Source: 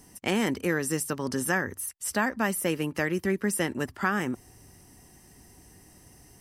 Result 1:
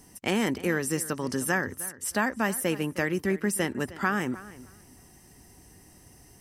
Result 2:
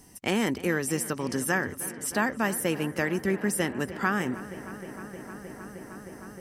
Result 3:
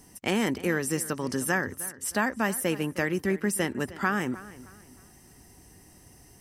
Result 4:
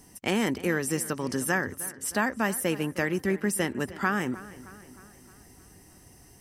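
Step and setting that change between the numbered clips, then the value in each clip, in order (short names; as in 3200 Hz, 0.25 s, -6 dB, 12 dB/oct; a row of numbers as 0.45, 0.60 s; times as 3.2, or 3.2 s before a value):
darkening echo, feedback: 18, 92, 33, 56%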